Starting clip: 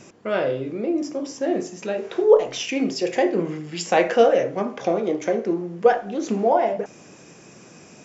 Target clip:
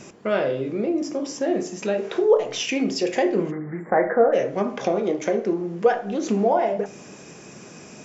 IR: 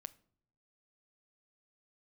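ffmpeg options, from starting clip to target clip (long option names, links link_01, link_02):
-filter_complex "[0:a]asplit=2[link_01][link_02];[link_02]acompressor=threshold=-27dB:ratio=6,volume=2.5dB[link_03];[link_01][link_03]amix=inputs=2:normalize=0,asplit=3[link_04][link_05][link_06];[link_04]afade=type=out:start_time=3.5:duration=0.02[link_07];[link_05]asuperstop=centerf=4500:order=20:qfactor=0.64,afade=type=in:start_time=3.5:duration=0.02,afade=type=out:start_time=4.32:duration=0.02[link_08];[link_06]afade=type=in:start_time=4.32:duration=0.02[link_09];[link_07][link_08][link_09]amix=inputs=3:normalize=0[link_10];[1:a]atrim=start_sample=2205,asetrate=61740,aresample=44100[link_11];[link_10][link_11]afir=irnorm=-1:irlink=0,volume=4.5dB"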